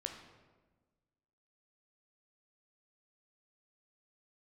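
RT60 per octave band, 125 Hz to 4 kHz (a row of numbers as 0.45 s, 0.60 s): 1.7 s, 1.7 s, 1.5 s, 1.2 s, 1.0 s, 0.80 s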